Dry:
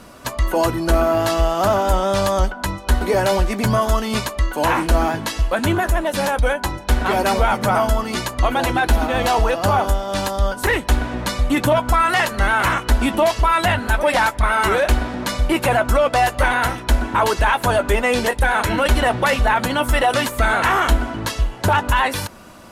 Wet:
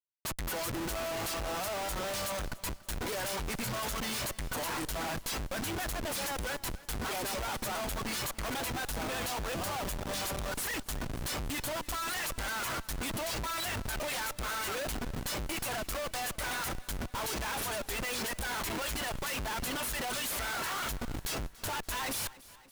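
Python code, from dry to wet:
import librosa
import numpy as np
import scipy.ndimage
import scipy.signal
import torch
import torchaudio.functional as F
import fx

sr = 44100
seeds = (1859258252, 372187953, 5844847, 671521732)

p1 = fx.dereverb_blind(x, sr, rt60_s=0.6)
p2 = F.preemphasis(torch.from_numpy(p1), 0.9).numpy()
p3 = fx.schmitt(p2, sr, flips_db=-39.5)
p4 = p3 + fx.echo_feedback(p3, sr, ms=285, feedback_pct=59, wet_db=-20.0, dry=0)
y = p4 * librosa.db_to_amplitude(-2.0)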